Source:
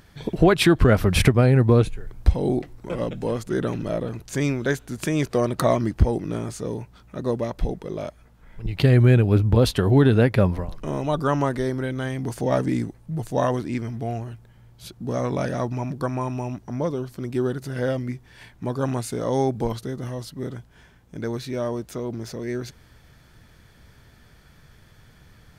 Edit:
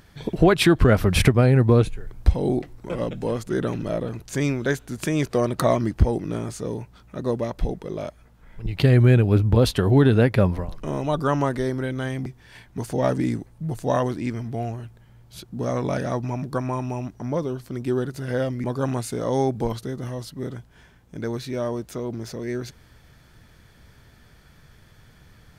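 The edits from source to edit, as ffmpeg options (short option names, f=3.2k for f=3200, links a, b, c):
-filter_complex "[0:a]asplit=4[a][b][c][d];[a]atrim=end=12.262[e];[b]atrim=start=18.118:end=18.642[f];[c]atrim=start=12.258:end=18.122[g];[d]atrim=start=18.638[h];[e][f]acrossfade=d=0.004:c1=hsin:c2=hsin[i];[i][g]acrossfade=d=0.004:c1=hsin:c2=hsin[j];[j][h]acrossfade=d=0.004:c1=hsin:c2=hsin"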